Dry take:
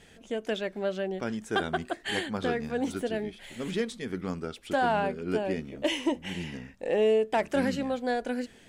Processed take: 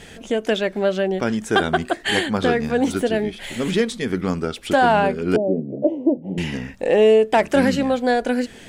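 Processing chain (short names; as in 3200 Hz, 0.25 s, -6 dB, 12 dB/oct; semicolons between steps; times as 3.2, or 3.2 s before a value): 5.36–6.38 elliptic band-pass 120–650 Hz, stop band 40 dB; in parallel at -2.5 dB: compressor, threshold -39 dBFS, peak gain reduction 16.5 dB; on the sum: gain +9 dB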